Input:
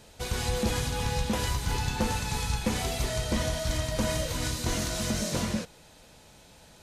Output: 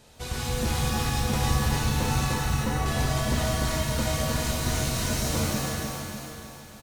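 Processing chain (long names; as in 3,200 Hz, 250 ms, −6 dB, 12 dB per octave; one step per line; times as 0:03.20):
0:02.33–0:02.86: Butterworth low-pass 2,100 Hz 72 dB per octave
repeating echo 300 ms, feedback 51%, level −3.5 dB
reverb with rising layers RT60 1 s, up +7 semitones, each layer −2 dB, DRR 3 dB
level −2.5 dB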